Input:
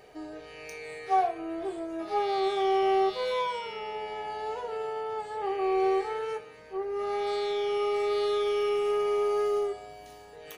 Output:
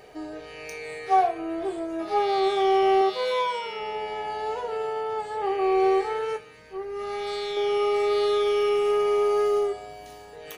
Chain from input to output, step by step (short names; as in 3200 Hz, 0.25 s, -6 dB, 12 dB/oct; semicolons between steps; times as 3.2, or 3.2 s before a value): 3.01–3.8 HPF 220 Hz 6 dB/oct; 6.36–7.57 bell 610 Hz -7 dB 2.2 oct; gain +4.5 dB